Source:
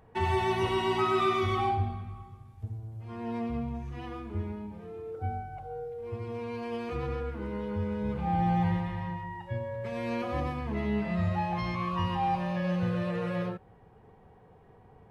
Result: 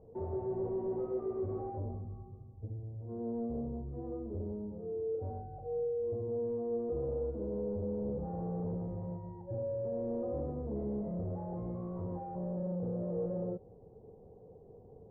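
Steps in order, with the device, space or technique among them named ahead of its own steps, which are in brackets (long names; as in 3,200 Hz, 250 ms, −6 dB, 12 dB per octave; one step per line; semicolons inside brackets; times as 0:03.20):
overdriven synthesiser ladder filter (soft clipping −34 dBFS, distortion −7 dB; transistor ladder low-pass 590 Hz, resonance 50%)
level +8 dB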